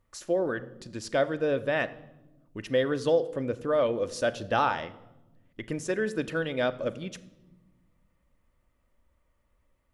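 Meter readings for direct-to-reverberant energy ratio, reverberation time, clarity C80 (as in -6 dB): 11.0 dB, 1.0 s, 18.5 dB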